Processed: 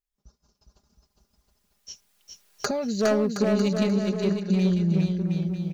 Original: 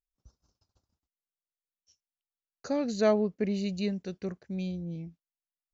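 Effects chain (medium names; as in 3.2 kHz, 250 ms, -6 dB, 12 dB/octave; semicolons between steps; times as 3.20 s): recorder AGC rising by 12 dB/s; comb 4.9 ms, depth 77%; overload inside the chain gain 18.5 dB; bouncing-ball echo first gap 410 ms, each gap 0.75×, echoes 5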